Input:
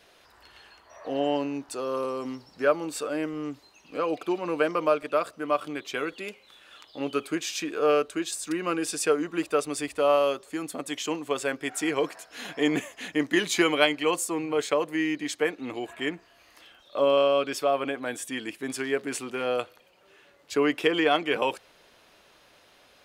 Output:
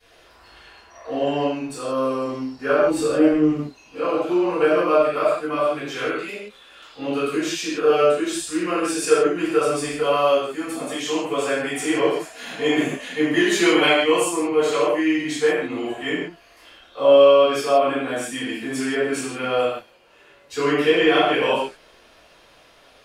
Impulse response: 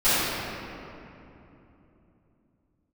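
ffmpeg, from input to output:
-filter_complex "[0:a]asettb=1/sr,asplit=3[a][b][c];[a]atrim=end=2.854[d];[b]atrim=start=2.85:end=3.51,asetpts=PTS-STARTPTS,afade=t=in:d=0.004:c=qsin,afade=t=out:st=0.656:d=0.004:c=qsin,lowshelf=f=460:g=11[e];[c]atrim=start=3.506[f];[d][e]acrossfade=d=0.004:c1=hsin:c2=qsin[g];[g][f]acrossfade=d=0.004:c1=qsin:c2=hsin[h];[1:a]atrim=start_sample=2205,afade=t=out:st=0.44:d=0.01,atrim=end_sample=19845,asetrate=88200,aresample=44100[i];[h][i]afir=irnorm=-1:irlink=0,volume=-7.5dB"

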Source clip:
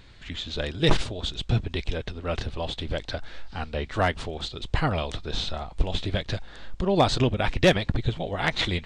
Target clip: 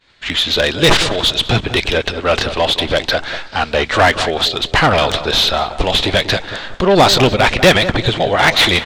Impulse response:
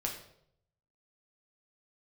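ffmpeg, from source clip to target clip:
-filter_complex "[0:a]asplit=2[a][b];[b]highpass=f=720:p=1,volume=19dB,asoftclip=type=tanh:threshold=-11dB[c];[a][c]amix=inputs=2:normalize=0,lowpass=f=6.7k:p=1,volume=-6dB,asplit=2[d][e];[e]adelay=189,lowpass=f=2.1k:p=1,volume=-11.5dB,asplit=2[f][g];[g]adelay=189,lowpass=f=2.1k:p=1,volume=0.36,asplit=2[h][i];[i]adelay=189,lowpass=f=2.1k:p=1,volume=0.36,asplit=2[j][k];[k]adelay=189,lowpass=f=2.1k:p=1,volume=0.36[l];[d][f][h][j][l]amix=inputs=5:normalize=0,agate=range=-33dB:threshold=-32dB:ratio=3:detection=peak,volume=8.5dB"

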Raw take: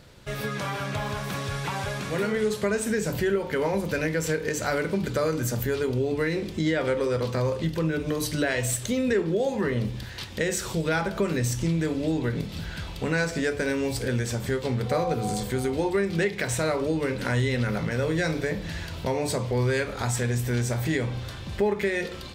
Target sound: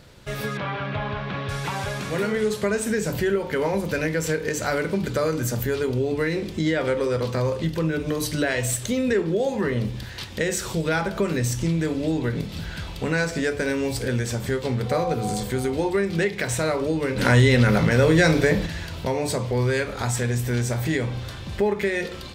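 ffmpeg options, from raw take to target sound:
-filter_complex "[0:a]asettb=1/sr,asplit=3[a][b][c];[a]atrim=end=0.574[d];[b]atrim=start=0.57:end=1.49,asetpts=PTS-STARTPTS,afade=t=in:d=0.004:c=qsin,afade=t=out:st=0.916:d=0.004:c=qsin,lowpass=f=3.5k:w=0.5412,lowpass=f=3.5k:w=1.3066[e];[c]atrim=start=1.486[f];[d][e]acrossfade=d=0.004:c1=hsin:c2=qsin[g];[g][f]acrossfade=d=0.004:c1=qsin:c2=hsin,asplit=3[h][i][j];[h]afade=t=out:st=17.16:d=0.02[k];[i]acontrast=79,afade=t=in:st=17.16:d=0.02,afade=t=out:st=18.65:d=0.02[l];[j]afade=t=in:st=18.65:d=0.02[m];[k][l][m]amix=inputs=3:normalize=0,volume=2dB"

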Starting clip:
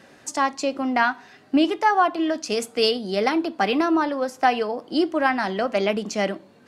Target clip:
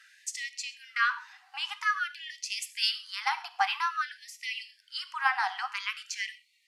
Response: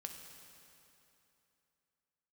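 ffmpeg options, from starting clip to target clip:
-filter_complex "[0:a]aresample=32000,aresample=44100,asplit=2[a][b];[b]highpass=f=460:t=q:w=4.9[c];[1:a]atrim=start_sample=2205,atrim=end_sample=6174[d];[c][d]afir=irnorm=-1:irlink=0,volume=3dB[e];[a][e]amix=inputs=2:normalize=0,afftfilt=real='re*gte(b*sr/1024,720*pow(1900/720,0.5+0.5*sin(2*PI*0.5*pts/sr)))':imag='im*gte(b*sr/1024,720*pow(1900/720,0.5+0.5*sin(2*PI*0.5*pts/sr)))':win_size=1024:overlap=0.75,volume=-8.5dB"

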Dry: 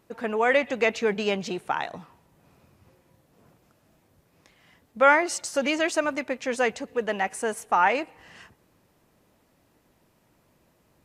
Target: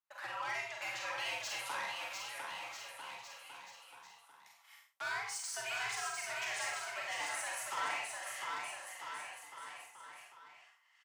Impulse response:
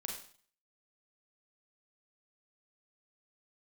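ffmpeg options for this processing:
-filter_complex "[0:a]highpass=f=780:w=0.5412,highpass=f=780:w=1.3066,agate=range=-27dB:threshold=-59dB:ratio=16:detection=peak,asettb=1/sr,asplit=3[a][b][c];[a]atrim=end=1.344[d];[b]atrim=start=1.34:end=5.09,asetpts=PTS-STARTPTS,afade=t=in:d=0.004:c=qsin,afade=t=out:st=3.746:d=0.004:c=qsin,highshelf=f=5.2k:g=11.5[e];[c]atrim=start=5.086[f];[d][e]acrossfade=d=0.004:c1=hsin:c2=qsin[g];[g][f]acrossfade=d=0.004:c1=qsin:c2=hsin,acompressor=threshold=-36dB:ratio=2.5,asoftclip=type=tanh:threshold=-35dB,afreqshift=110,asplit=2[h][i];[i]adelay=47,volume=-10.5dB[j];[h][j]amix=inputs=2:normalize=0,aecho=1:1:700|1295|1801|2231|2596:0.631|0.398|0.251|0.158|0.1[k];[1:a]atrim=start_sample=2205,afade=t=out:st=0.2:d=0.01,atrim=end_sample=9261[l];[k][l]afir=irnorm=-1:irlink=0,volume=1dB"

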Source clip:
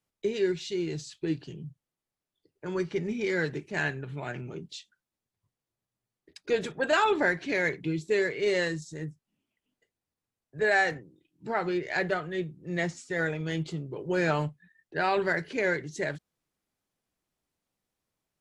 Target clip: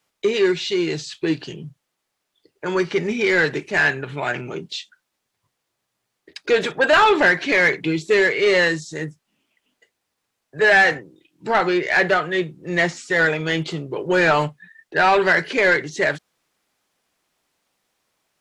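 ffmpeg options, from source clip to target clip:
-filter_complex "[0:a]asplit=2[a][b];[b]highpass=f=720:p=1,volume=15dB,asoftclip=type=tanh:threshold=-13dB[c];[a][c]amix=inputs=2:normalize=0,lowpass=f=6.6k:p=1,volume=-6dB,acrossover=split=4500[d][e];[e]acompressor=threshold=-44dB:ratio=4:attack=1:release=60[f];[d][f]amix=inputs=2:normalize=0,volume=6.5dB"

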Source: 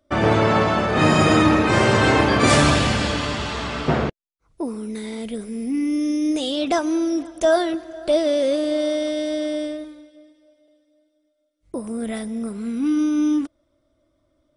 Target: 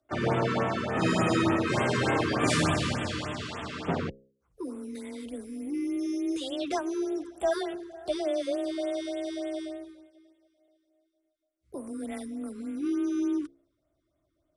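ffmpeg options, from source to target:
-filter_complex "[0:a]bandreject=f=64.63:t=h:w=4,bandreject=f=129.26:t=h:w=4,bandreject=f=193.89:t=h:w=4,bandreject=f=258.52:t=h:w=4,bandreject=f=323.15:t=h:w=4,bandreject=f=387.78:t=h:w=4,bandreject=f=452.41:t=h:w=4,bandreject=f=517.04:t=h:w=4,afreqshift=18,asplit=2[a][b];[b]asetrate=52444,aresample=44100,atempo=0.840896,volume=-17dB[c];[a][c]amix=inputs=2:normalize=0,afftfilt=real='re*(1-between(b*sr/1024,650*pow(5300/650,0.5+0.5*sin(2*PI*3.4*pts/sr))/1.41,650*pow(5300/650,0.5+0.5*sin(2*PI*3.4*pts/sr))*1.41))':imag='im*(1-between(b*sr/1024,650*pow(5300/650,0.5+0.5*sin(2*PI*3.4*pts/sr))/1.41,650*pow(5300/650,0.5+0.5*sin(2*PI*3.4*pts/sr))*1.41))':win_size=1024:overlap=0.75,volume=-9dB"

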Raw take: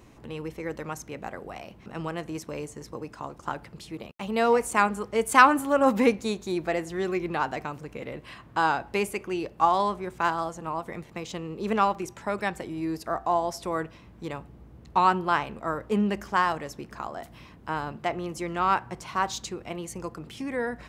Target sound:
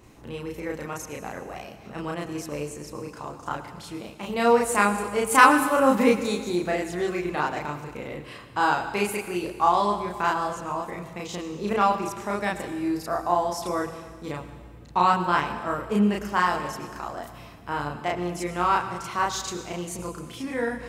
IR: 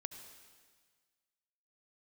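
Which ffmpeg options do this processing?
-filter_complex "[0:a]asplit=2[a][b];[1:a]atrim=start_sample=2205,highshelf=f=6.1k:g=8,adelay=34[c];[b][c]afir=irnorm=-1:irlink=0,volume=2.5dB[d];[a][d]amix=inputs=2:normalize=0,volume=-1dB"

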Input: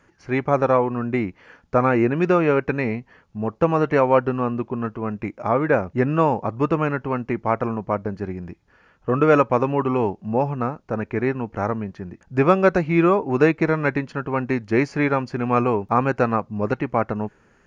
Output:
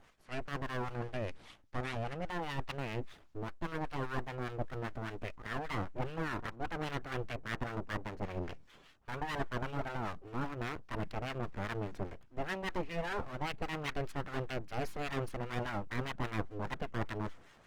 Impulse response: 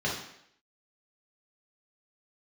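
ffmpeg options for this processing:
-filter_complex "[0:a]areverse,acompressor=threshold=-32dB:ratio=6,areverse,aeval=exprs='abs(val(0))':c=same,acrossover=split=1100[a][b];[a]aeval=exprs='val(0)*(1-0.7/2+0.7/2*cos(2*PI*5*n/s))':c=same[c];[b]aeval=exprs='val(0)*(1-0.7/2-0.7/2*cos(2*PI*5*n/s))':c=same[d];[c][d]amix=inputs=2:normalize=0,volume=3.5dB" -ar 48000 -c:a libopus -b:a 20k

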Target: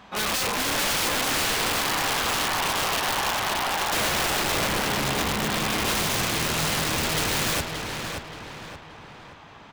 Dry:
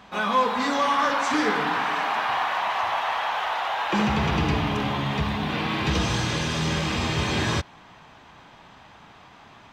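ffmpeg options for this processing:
-filter_complex "[0:a]aeval=exprs='(mod(10.6*val(0)+1,2)-1)/10.6':c=same,asplit=2[a][b];[b]adelay=576,lowpass=f=4.4k:p=1,volume=-5dB,asplit=2[c][d];[d]adelay=576,lowpass=f=4.4k:p=1,volume=0.45,asplit=2[e][f];[f]adelay=576,lowpass=f=4.4k:p=1,volume=0.45,asplit=2[g][h];[h]adelay=576,lowpass=f=4.4k:p=1,volume=0.45,asplit=2[i][j];[j]adelay=576,lowpass=f=4.4k:p=1,volume=0.45,asplit=2[k][l];[l]adelay=576,lowpass=f=4.4k:p=1,volume=0.45[m];[a][c][e][g][i][k][m]amix=inputs=7:normalize=0"

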